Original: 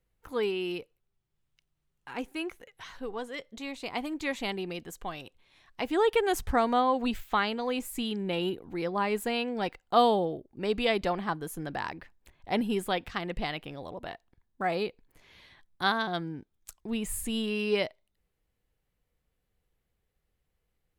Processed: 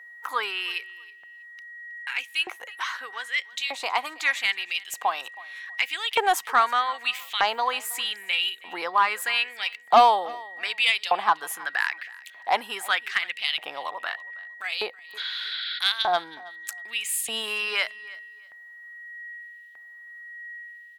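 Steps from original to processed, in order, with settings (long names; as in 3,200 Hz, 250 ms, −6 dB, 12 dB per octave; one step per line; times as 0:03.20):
steady tone 1,900 Hz −57 dBFS
in parallel at +2.5 dB: downward compressor, threshold −41 dBFS, peak gain reduction 21.5 dB
on the sum: auto-filter high-pass saw up 0.81 Hz 740–3,200 Hz
soft clipping −13 dBFS, distortion −17 dB
healed spectral selection 0:15.20–0:15.76, 1,300–5,400 Hz after
on a send: repeating echo 321 ms, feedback 23%, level −21.5 dB
on the sum: level +5 dB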